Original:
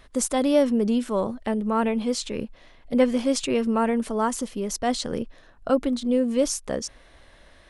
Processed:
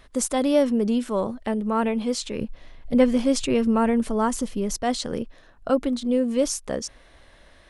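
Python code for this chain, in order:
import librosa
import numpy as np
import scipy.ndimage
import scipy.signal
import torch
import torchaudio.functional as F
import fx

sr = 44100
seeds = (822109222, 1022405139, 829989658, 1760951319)

y = fx.low_shelf(x, sr, hz=150.0, db=10.5, at=(2.41, 4.77))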